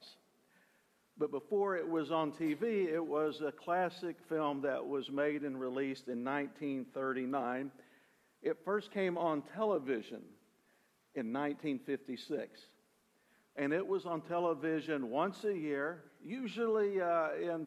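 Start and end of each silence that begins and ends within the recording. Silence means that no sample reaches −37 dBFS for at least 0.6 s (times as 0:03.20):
0:07.67–0:08.45
0:10.15–0:11.17
0:12.44–0:13.58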